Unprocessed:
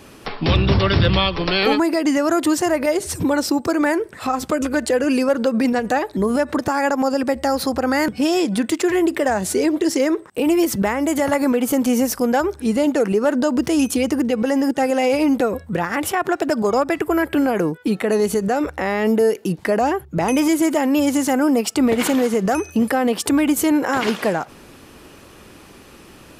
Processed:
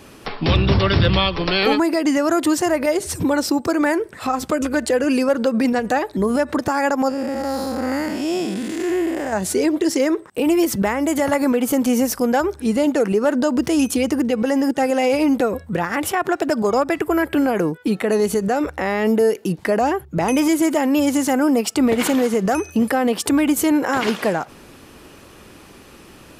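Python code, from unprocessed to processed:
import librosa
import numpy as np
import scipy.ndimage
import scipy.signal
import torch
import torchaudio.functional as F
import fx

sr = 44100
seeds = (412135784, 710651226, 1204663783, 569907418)

y = fx.spec_blur(x, sr, span_ms=218.0, at=(7.09, 9.33))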